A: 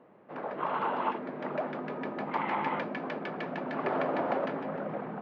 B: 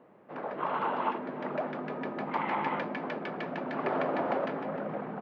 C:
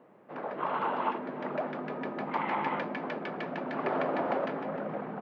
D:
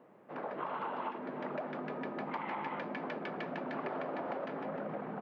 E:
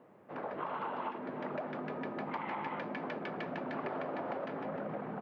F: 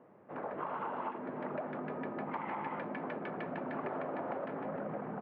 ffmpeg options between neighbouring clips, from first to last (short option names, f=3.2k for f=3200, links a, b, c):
-filter_complex "[0:a]asplit=2[a][b];[b]adelay=309,volume=-16dB,highshelf=f=4k:g=-6.95[c];[a][c]amix=inputs=2:normalize=0"
-af "equalizer=f=65:w=1.7:g=-8"
-af "acompressor=threshold=-33dB:ratio=6,volume=-2dB"
-af "equalizer=f=94:w=2.5:g=11"
-af "lowpass=2.2k"